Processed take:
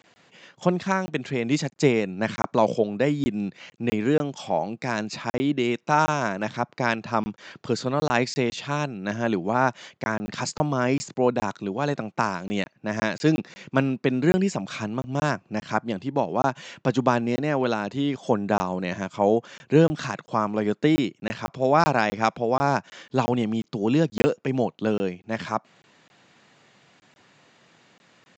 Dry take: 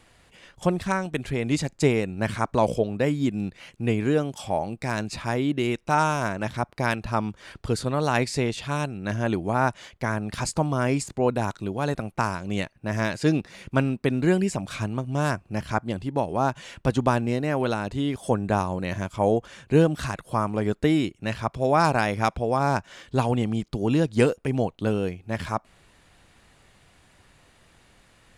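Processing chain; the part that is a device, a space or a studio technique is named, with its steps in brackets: call with lost packets (high-pass 140 Hz 24 dB/octave; resampled via 16 kHz; lost packets of 20 ms random); trim +1.5 dB

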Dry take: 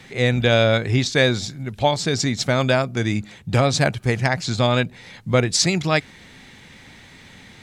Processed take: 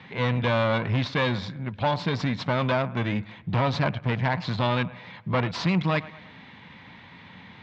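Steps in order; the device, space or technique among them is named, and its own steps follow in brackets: analogue delay pedal into a guitar amplifier (bucket-brigade echo 112 ms, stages 2048, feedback 47%, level -23.5 dB; valve stage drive 20 dB, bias 0.55; cabinet simulation 91–3700 Hz, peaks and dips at 97 Hz +3 dB, 180 Hz +5 dB, 380 Hz -5 dB, 1 kHz +10 dB)

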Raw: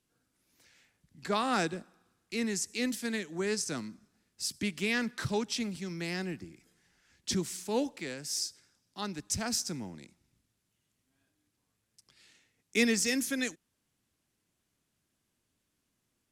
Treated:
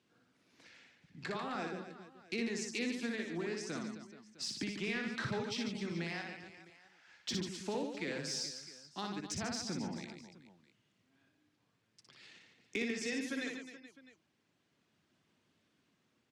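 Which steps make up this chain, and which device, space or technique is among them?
reverb removal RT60 0.52 s; AM radio (band-pass 130–4100 Hz; compression 10:1, threshold -42 dBFS, peak gain reduction 19 dB; saturation -31.5 dBFS, distortion -28 dB; tremolo 0.39 Hz, depth 26%); 6.04–7.29 s: resonant low shelf 470 Hz -13 dB, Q 1.5; reverse bouncing-ball echo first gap 60 ms, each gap 1.4×, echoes 5; trim +6.5 dB

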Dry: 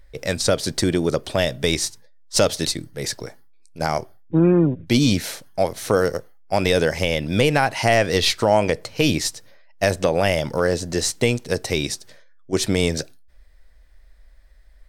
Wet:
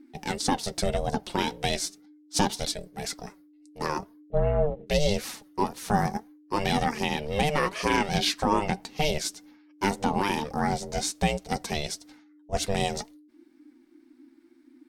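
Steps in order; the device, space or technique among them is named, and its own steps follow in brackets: alien voice (ring modulator 300 Hz; flange 1.9 Hz, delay 3.6 ms, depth 2.2 ms, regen +47%)

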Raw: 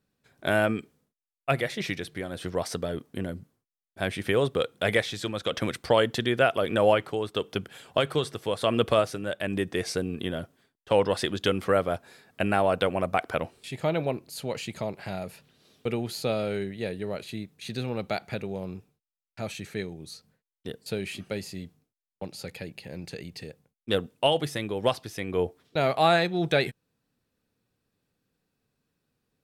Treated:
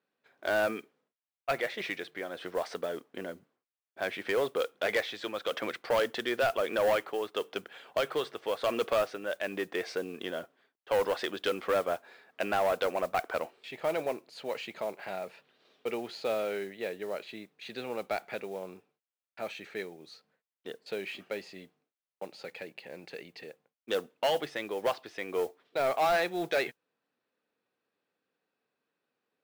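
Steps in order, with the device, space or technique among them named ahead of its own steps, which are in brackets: carbon microphone (band-pass 420–3100 Hz; saturation -21 dBFS, distortion -11 dB; modulation noise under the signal 23 dB)

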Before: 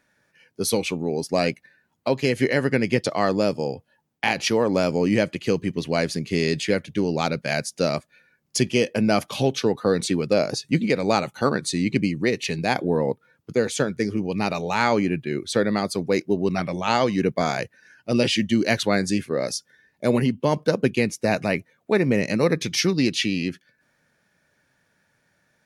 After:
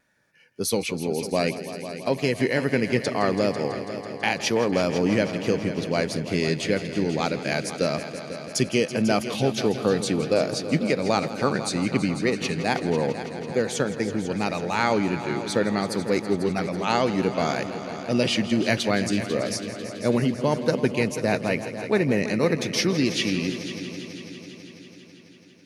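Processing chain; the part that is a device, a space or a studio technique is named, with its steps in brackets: multi-head tape echo (multi-head delay 165 ms, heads all three, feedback 64%, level -15.5 dB; wow and flutter 23 cents); trim -2 dB

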